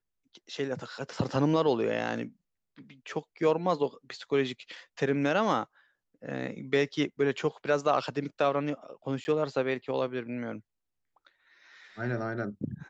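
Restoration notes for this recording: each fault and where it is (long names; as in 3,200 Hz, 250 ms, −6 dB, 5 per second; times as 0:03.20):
0:09.24–0:09.25: drop-out 10 ms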